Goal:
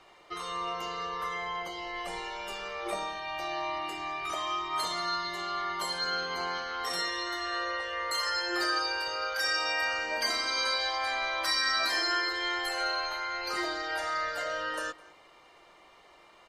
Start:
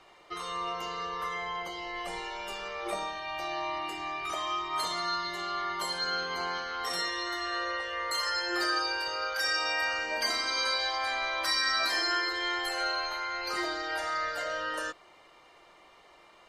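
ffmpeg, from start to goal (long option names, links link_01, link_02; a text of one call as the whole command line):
ffmpeg -i in.wav -filter_complex "[0:a]asplit=2[link_01][link_02];[link_02]adelay=209.9,volume=-21dB,highshelf=frequency=4000:gain=-4.72[link_03];[link_01][link_03]amix=inputs=2:normalize=0" out.wav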